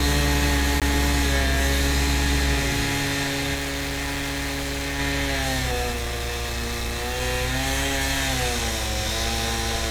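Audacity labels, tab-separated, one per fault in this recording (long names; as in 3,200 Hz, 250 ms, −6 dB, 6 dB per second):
0.800000	0.820000	drop-out 17 ms
3.540000	5.000000	clipping −24.5 dBFS
5.910000	7.220000	clipping −23.5 dBFS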